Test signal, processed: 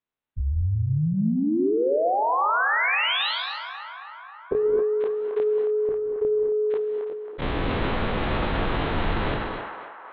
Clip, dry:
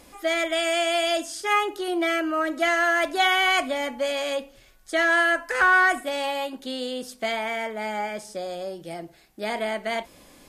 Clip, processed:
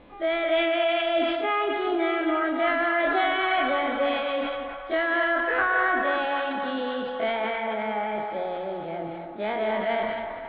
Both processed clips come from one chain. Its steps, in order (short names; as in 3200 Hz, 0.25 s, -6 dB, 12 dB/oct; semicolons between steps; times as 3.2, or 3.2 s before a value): spectral dilation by 60 ms; steep low-pass 3900 Hz 72 dB/oct; high shelf 2500 Hz -11 dB; notches 60/120/180/240 Hz; compressor 3:1, threshold -21 dBFS; narrowing echo 0.271 s, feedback 74%, band-pass 1100 Hz, level -7 dB; non-linear reverb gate 0.26 s rising, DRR 5.5 dB; sustainer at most 31 dB/s; gain -1.5 dB